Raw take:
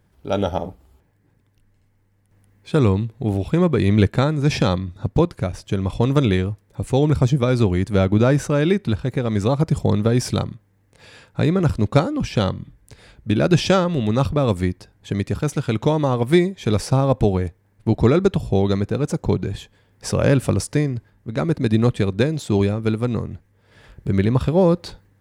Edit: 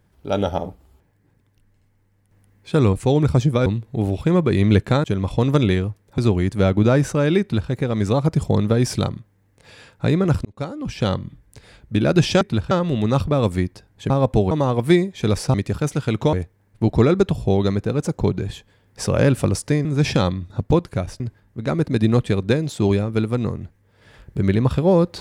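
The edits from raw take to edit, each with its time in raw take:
4.31–5.66 s: move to 20.90 s
6.80–7.53 s: move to 2.93 s
8.76–9.06 s: copy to 13.76 s
11.80–12.51 s: fade in
15.15–15.94 s: swap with 16.97–17.38 s

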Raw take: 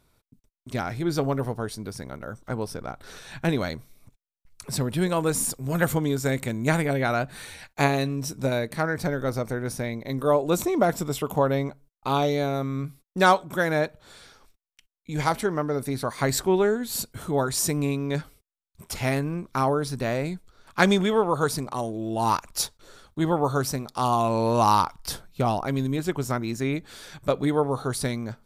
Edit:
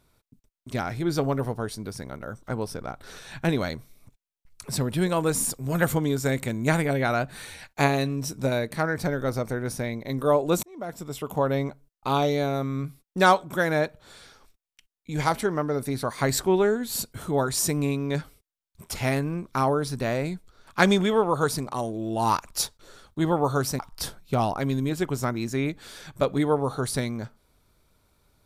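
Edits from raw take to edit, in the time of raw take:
10.63–11.64 s: fade in
23.79–24.86 s: delete

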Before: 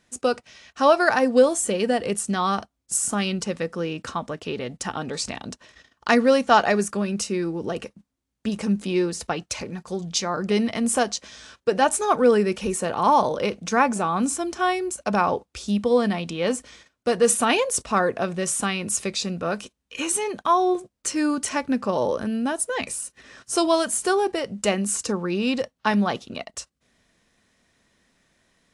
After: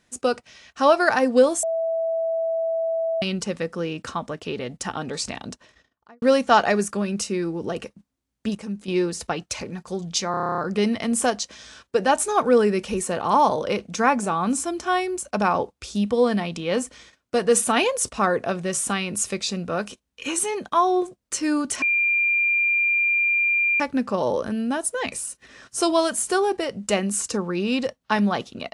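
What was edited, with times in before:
1.63–3.22 s: bleep 656 Hz -21 dBFS
5.46–6.22 s: studio fade out
8.55–8.88 s: gain -8 dB
10.31 s: stutter 0.03 s, 10 plays
21.55 s: add tone 2.39 kHz -17.5 dBFS 1.98 s

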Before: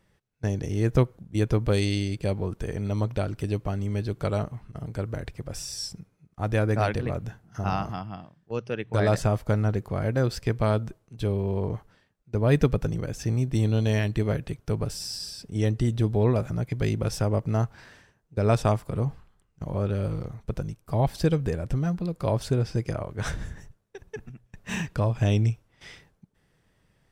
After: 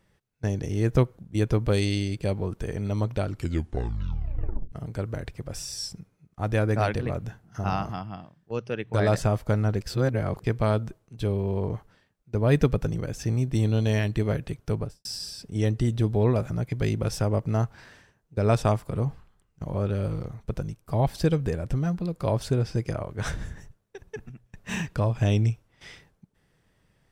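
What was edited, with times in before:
3.26 s: tape stop 1.46 s
9.81–10.44 s: reverse
14.73–15.05 s: studio fade out

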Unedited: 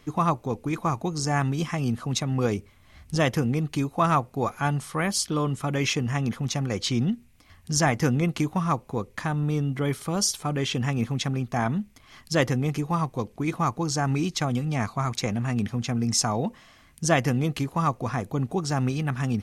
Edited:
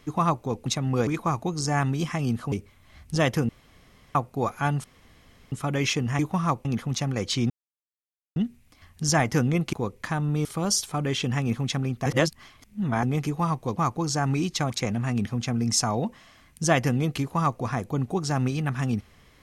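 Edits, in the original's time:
2.11–2.52 s: move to 0.66 s
3.49–4.15 s: room tone
4.84–5.52 s: room tone
7.04 s: insert silence 0.86 s
8.41–8.87 s: move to 6.19 s
9.59–9.96 s: delete
11.57–12.54 s: reverse
13.28–13.58 s: delete
14.51–15.11 s: delete

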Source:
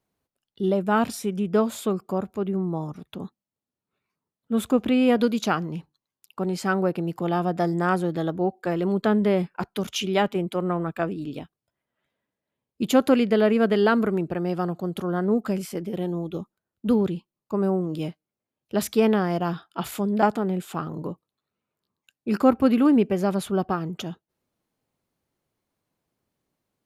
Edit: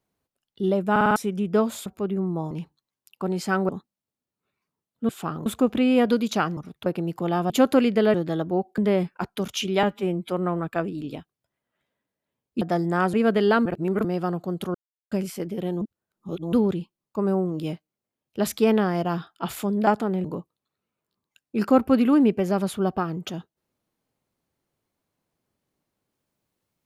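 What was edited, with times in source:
0.91 s: stutter in place 0.05 s, 5 plays
1.86–2.23 s: delete
2.88–3.17 s: swap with 5.68–6.86 s
7.50–8.02 s: swap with 12.85–13.49 s
8.66–9.17 s: delete
10.22–10.53 s: stretch 1.5×
14.01–14.40 s: reverse
15.10–15.47 s: mute
16.17–16.88 s: reverse
20.60–20.97 s: move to 4.57 s

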